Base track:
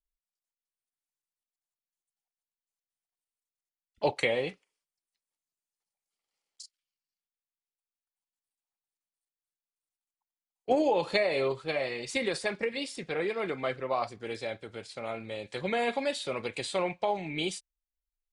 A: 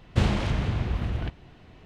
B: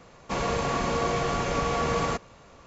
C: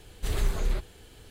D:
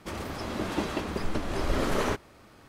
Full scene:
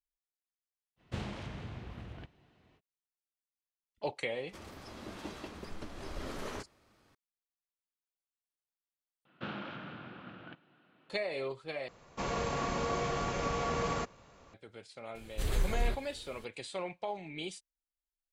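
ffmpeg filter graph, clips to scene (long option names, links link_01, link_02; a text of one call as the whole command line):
ffmpeg -i bed.wav -i cue0.wav -i cue1.wav -i cue2.wav -i cue3.wav -filter_complex "[1:a]asplit=2[link_01][link_02];[0:a]volume=-8.5dB[link_03];[link_01]highpass=frequency=120:poles=1[link_04];[4:a]equalizer=frequency=5000:width=0.67:gain=3.5[link_05];[link_02]highpass=frequency=190:width=0.5412,highpass=frequency=190:width=1.3066,equalizer=frequency=220:width_type=q:width=4:gain=-5,equalizer=frequency=420:width_type=q:width=4:gain=-8,equalizer=frequency=700:width_type=q:width=4:gain=-4,equalizer=frequency=990:width_type=q:width=4:gain=-4,equalizer=frequency=1400:width_type=q:width=4:gain=9,equalizer=frequency=2000:width_type=q:width=4:gain=-7,lowpass=frequency=3400:width=0.5412,lowpass=frequency=3400:width=1.3066[link_06];[link_03]asplit=3[link_07][link_08][link_09];[link_07]atrim=end=9.254[link_10];[link_06]atrim=end=1.85,asetpts=PTS-STARTPTS,volume=-10dB[link_11];[link_08]atrim=start=11.096:end=11.884[link_12];[2:a]atrim=end=2.66,asetpts=PTS-STARTPTS,volume=-7dB[link_13];[link_09]atrim=start=14.536[link_14];[link_04]atrim=end=1.85,asetpts=PTS-STARTPTS,volume=-13.5dB,afade=type=in:duration=0.05,afade=type=out:start_time=1.8:duration=0.05,adelay=960[link_15];[link_05]atrim=end=2.68,asetpts=PTS-STARTPTS,volume=-14dB,afade=type=in:duration=0.004:curve=hsin,afade=type=out:start_time=2.676:duration=0.004:curve=hsin,adelay=4470[link_16];[3:a]atrim=end=1.3,asetpts=PTS-STARTPTS,volume=-4dB,afade=type=in:duration=0.004:curve=hsin,afade=type=out:start_time=1.296:duration=0.004:curve=hsin,adelay=15150[link_17];[link_10][link_11]acrossfade=duration=0.004:curve1=hsin:curve2=hsin[link_18];[link_18][link_12]acrossfade=duration=0.004:curve1=hsin:curve2=hsin[link_19];[link_19][link_13]acrossfade=duration=0.004:curve1=hsin:curve2=hsin[link_20];[link_20][link_14]acrossfade=duration=0.004:curve1=hsin:curve2=hsin[link_21];[link_21][link_15][link_16][link_17]amix=inputs=4:normalize=0" out.wav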